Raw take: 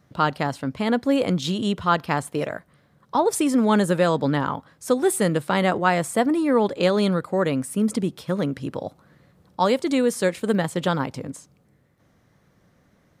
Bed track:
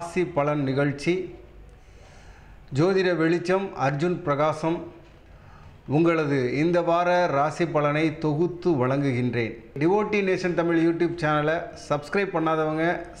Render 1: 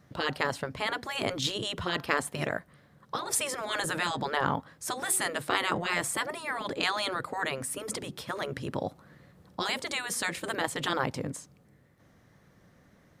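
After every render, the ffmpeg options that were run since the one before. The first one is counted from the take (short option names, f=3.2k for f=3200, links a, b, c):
-af "equalizer=f=1.8k:t=o:w=0.25:g=3,afftfilt=real='re*lt(hypot(re,im),0.282)':imag='im*lt(hypot(re,im),0.282)':win_size=1024:overlap=0.75"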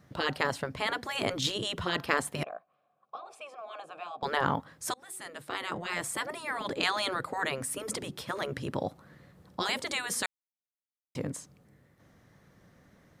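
-filter_complex "[0:a]asettb=1/sr,asplit=3[a][b][c];[a]atrim=end=2.434[d];[b]atrim=start=2.43:end=4.23,asetpts=PTS-STARTPTS,afade=t=in:d=0.004:c=qsin,afade=t=out:st=1.796:d=0.004:c=qsin,asplit=3[e][f][g];[e]bandpass=f=730:t=q:w=8,volume=0dB[h];[f]bandpass=f=1.09k:t=q:w=8,volume=-6dB[i];[g]bandpass=f=2.44k:t=q:w=8,volume=-9dB[j];[h][i][j]amix=inputs=3:normalize=0[k];[c]atrim=start=4.226[l];[d][k]acrossfade=d=0.004:c1=hsin:c2=qsin[m];[m][l]acrossfade=d=0.004:c1=qsin:c2=hsin,asplit=4[n][o][p][q];[n]atrim=end=4.94,asetpts=PTS-STARTPTS,afade=t=out:st=4.936:d=0.004:c=hsin:silence=0.0668344[r];[o]atrim=start=4.94:end=10.26,asetpts=PTS-STARTPTS,afade=t=in:d=1.77:silence=0.0668344,afade=t=out:st=5.316:d=0.004:c=hsin[s];[p]atrim=start=10.26:end=11.15,asetpts=PTS-STARTPTS,volume=0[t];[q]atrim=start=11.15,asetpts=PTS-STARTPTS,afade=t=in:d=0.004:c=hsin[u];[r][s][t][u]concat=n=4:v=0:a=1"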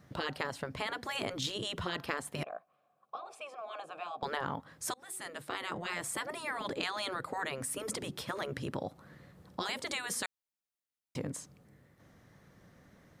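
-af "acompressor=threshold=-34dB:ratio=3"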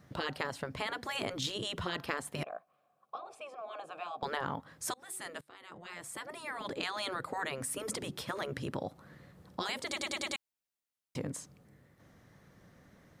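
-filter_complex "[0:a]asettb=1/sr,asplit=3[a][b][c];[a]atrim=end=3.184[d];[b]atrim=start=3.18:end=3.85,asetpts=PTS-STARTPTS,afade=t=in:d=0.004:c=qsin,afade=t=out:st=0.666:d=0.004:c=qsin,tiltshelf=f=680:g=3.5[e];[c]atrim=start=3.846[f];[d][e]acrossfade=d=0.004:c1=hsin:c2=qsin[g];[g][f]acrossfade=d=0.004:c1=qsin:c2=hsin,asplit=7[h][i][j][k][l][m][n];[h]atrim=end=5.41,asetpts=PTS-STARTPTS,afade=t=out:st=5.406:d=0.004:c=hsin:silence=0.0794328[o];[i]atrim=start=5.41:end=9.962,asetpts=PTS-STARTPTS,afade=t=in:d=1.66:silence=0.0794328[p];[j]atrim=start=9.858:end=9.962[q];[k]atrim=start=9.858:end=9.962[r];[l]atrim=start=9.858:end=9.962[s];[m]atrim=start=9.858:end=9.962[t];[n]atrim=start=10.358[u];[o][p]concat=n=2:v=0:a=1[v];[v][q]acrossfade=d=0.004:c1=hsin:c2=hsin[w];[w][r]acrossfade=d=0.004:c1=hsin:c2=hsin[x];[x][s]acrossfade=d=0.004:c1=hsin:c2=hsin[y];[y][t]acrossfade=d=0.004:c1=hsin:c2=hsin[z];[z][u]acrossfade=d=0.004:c1=hsin:c2=hsin"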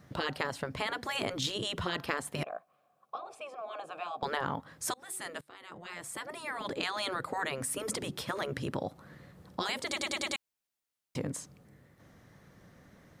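-af "volume=2.5dB"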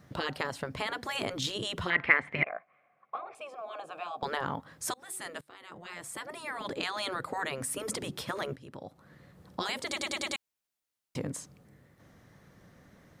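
-filter_complex "[0:a]asettb=1/sr,asplit=3[a][b][c];[a]atrim=end=1.904[d];[b]atrim=start=1.9:end=3.35,asetpts=PTS-STARTPTS,afade=t=in:d=0.004:c=qsin,afade=t=out:st=1.446:d=0.004:c=qsin,lowpass=f=2.1k:t=q:w=11[e];[c]atrim=start=3.346[f];[d][e]acrossfade=d=0.004:c1=hsin:c2=qsin[g];[g][f]acrossfade=d=0.004:c1=qsin:c2=hsin,asplit=2[h][i];[h]atrim=end=8.56,asetpts=PTS-STARTPTS,afade=t=out:st=8.556:d=0.004:c=hsin:silence=0.125893[j];[i]atrim=start=8.56,asetpts=PTS-STARTPTS,afade=t=in:d=0.99:silence=0.125893[k];[j][k]concat=n=2:v=0:a=1"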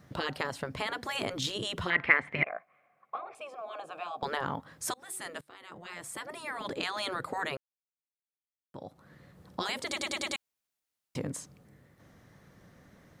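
-filter_complex "[0:a]asplit=3[a][b][c];[a]atrim=end=7.57,asetpts=PTS-STARTPTS,afade=t=out:st=7.566:d=0.004:c=hsin[d];[b]atrim=start=7.57:end=8.74,asetpts=PTS-STARTPTS,volume=0[e];[c]atrim=start=8.74,asetpts=PTS-STARTPTS,afade=t=in:d=0.004:c=hsin[f];[d][e][f]concat=n=3:v=0:a=1"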